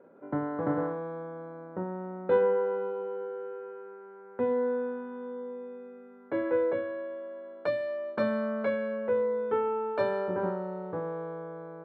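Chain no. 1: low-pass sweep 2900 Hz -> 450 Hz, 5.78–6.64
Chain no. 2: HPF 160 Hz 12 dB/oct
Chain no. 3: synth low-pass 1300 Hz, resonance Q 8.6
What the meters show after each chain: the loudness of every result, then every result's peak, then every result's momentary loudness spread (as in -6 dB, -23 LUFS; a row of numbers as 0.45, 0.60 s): -28.5, -32.0, -27.5 LUFS; -11.5, -14.0, -9.5 dBFS; 18, 14, 15 LU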